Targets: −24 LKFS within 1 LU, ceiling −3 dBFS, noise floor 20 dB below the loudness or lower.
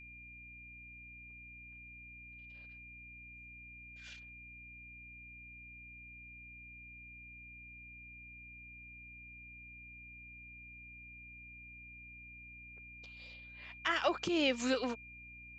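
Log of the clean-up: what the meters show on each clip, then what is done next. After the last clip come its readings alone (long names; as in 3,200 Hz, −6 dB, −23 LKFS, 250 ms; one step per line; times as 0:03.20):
mains hum 60 Hz; hum harmonics up to 300 Hz; level of the hum −57 dBFS; interfering tone 2,400 Hz; level of the tone −51 dBFS; integrated loudness −43.0 LKFS; sample peak −19.0 dBFS; target loudness −24.0 LKFS
→ hum removal 60 Hz, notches 5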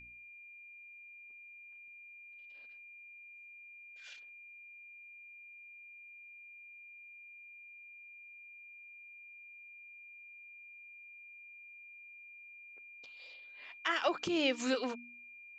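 mains hum none found; interfering tone 2,400 Hz; level of the tone −51 dBFS
→ notch filter 2,400 Hz, Q 30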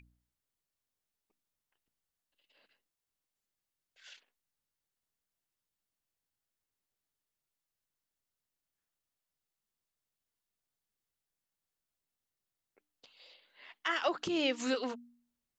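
interfering tone none found; integrated loudness −34.0 LKFS; sample peak −19.0 dBFS; target loudness −24.0 LKFS
→ level +10 dB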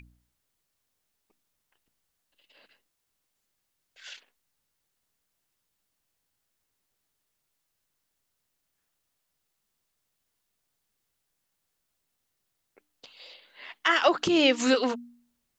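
integrated loudness −24.0 LKFS; sample peak −9.0 dBFS; background noise floor −80 dBFS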